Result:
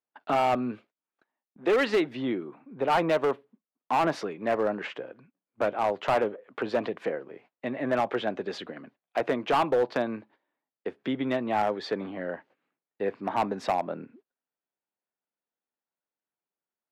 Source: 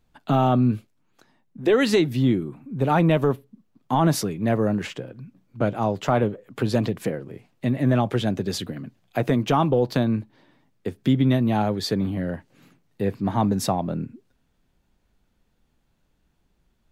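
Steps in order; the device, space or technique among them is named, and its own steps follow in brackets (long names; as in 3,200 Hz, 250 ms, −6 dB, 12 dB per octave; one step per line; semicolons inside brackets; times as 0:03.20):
walkie-talkie (band-pass filter 480–2,300 Hz; hard clipping −20 dBFS, distortion −13 dB; noise gate −56 dBFS, range −20 dB)
level +1.5 dB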